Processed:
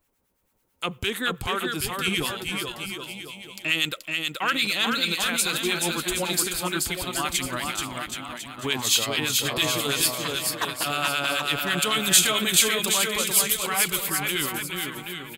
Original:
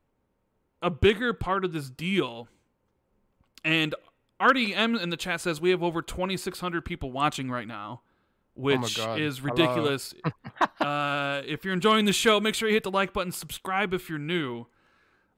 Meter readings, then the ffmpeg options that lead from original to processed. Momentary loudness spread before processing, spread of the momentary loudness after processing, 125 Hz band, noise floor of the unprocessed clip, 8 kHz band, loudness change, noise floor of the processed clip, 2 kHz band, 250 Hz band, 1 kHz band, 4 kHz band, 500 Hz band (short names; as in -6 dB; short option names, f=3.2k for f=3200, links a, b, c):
12 LU, 12 LU, -2.5 dB, -74 dBFS, +16.0 dB, +3.0 dB, -70 dBFS, +3.0 dB, -3.5 dB, -1.0 dB, +7.5 dB, -4.0 dB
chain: -filter_complex "[0:a]alimiter=limit=-18.5dB:level=0:latency=1,acrossover=split=1100[a][b];[a]aeval=exprs='val(0)*(1-0.7/2+0.7/2*cos(2*PI*9*n/s))':c=same[c];[b]aeval=exprs='val(0)*(1-0.7/2-0.7/2*cos(2*PI*9*n/s))':c=same[d];[c][d]amix=inputs=2:normalize=0,crystalizer=i=7.5:c=0,asplit=2[e][f];[f]aecho=0:1:430|774|1049|1269|1445:0.631|0.398|0.251|0.158|0.1[g];[e][g]amix=inputs=2:normalize=0"